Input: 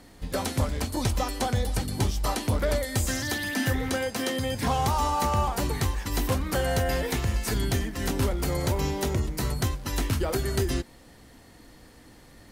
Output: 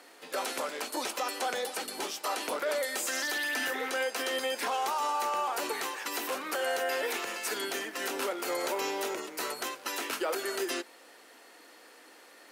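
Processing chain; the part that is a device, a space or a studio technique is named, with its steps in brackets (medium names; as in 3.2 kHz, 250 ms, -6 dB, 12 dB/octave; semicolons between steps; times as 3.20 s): laptop speaker (high-pass 370 Hz 24 dB/octave; peaking EQ 1.4 kHz +5 dB 0.49 oct; peaking EQ 2.6 kHz +5 dB 0.35 oct; peak limiter -22.5 dBFS, peak gain reduction 8 dB)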